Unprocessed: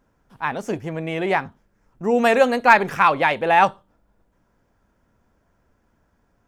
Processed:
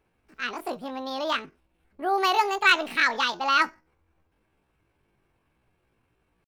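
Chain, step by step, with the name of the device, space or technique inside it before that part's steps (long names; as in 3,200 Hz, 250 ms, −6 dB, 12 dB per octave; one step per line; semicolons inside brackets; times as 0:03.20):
chipmunk voice (pitch shifter +8.5 semitones)
level −6 dB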